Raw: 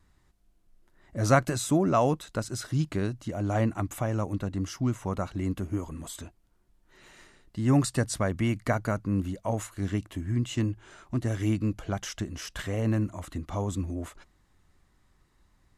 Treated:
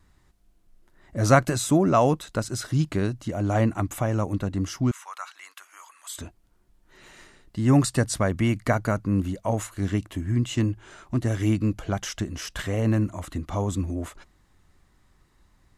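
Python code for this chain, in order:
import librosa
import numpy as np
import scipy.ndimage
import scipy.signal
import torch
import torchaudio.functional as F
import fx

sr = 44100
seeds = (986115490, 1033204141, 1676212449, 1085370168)

y = fx.highpass(x, sr, hz=1100.0, slope=24, at=(4.91, 6.18))
y = y * librosa.db_to_amplitude(4.0)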